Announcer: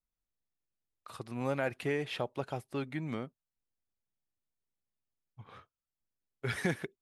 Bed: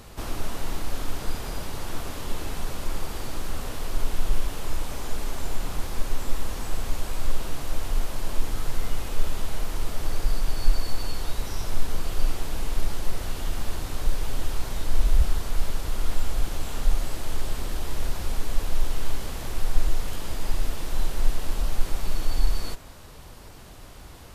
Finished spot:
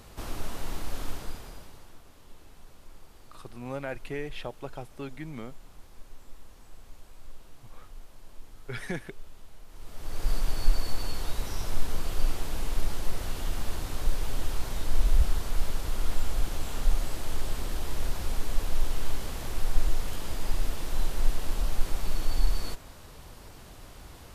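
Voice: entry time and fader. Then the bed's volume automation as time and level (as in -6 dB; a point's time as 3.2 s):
2.25 s, -2.5 dB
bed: 1.09 s -4.5 dB
2 s -21 dB
9.66 s -21 dB
10.3 s -2.5 dB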